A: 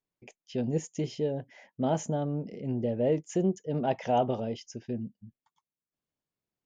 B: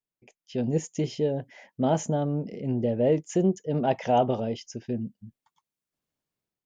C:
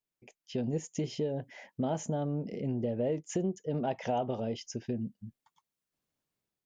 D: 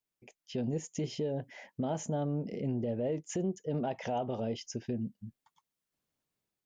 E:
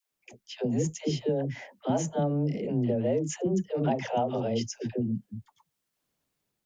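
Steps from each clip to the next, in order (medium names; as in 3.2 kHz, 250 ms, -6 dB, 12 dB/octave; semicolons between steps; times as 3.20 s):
level rider gain up to 10.5 dB; trim -6.5 dB
compression 3:1, threshold -31 dBFS, peak gain reduction 10.5 dB
peak limiter -25 dBFS, peak gain reduction 4.5 dB
phase dispersion lows, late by 119 ms, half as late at 430 Hz; trim +6 dB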